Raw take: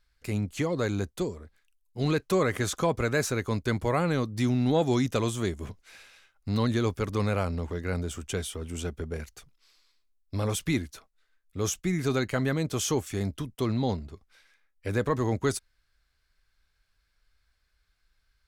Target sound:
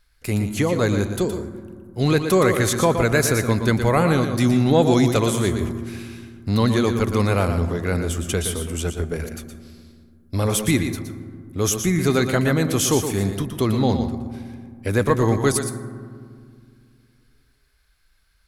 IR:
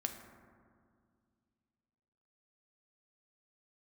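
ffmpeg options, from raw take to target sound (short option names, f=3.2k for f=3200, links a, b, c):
-filter_complex "[0:a]equalizer=f=11k:w=2.6:g=9.5,asplit=2[a][b];[1:a]atrim=start_sample=2205,adelay=118[c];[b][c]afir=irnorm=-1:irlink=0,volume=-7dB[d];[a][d]amix=inputs=2:normalize=0,volume=7.5dB"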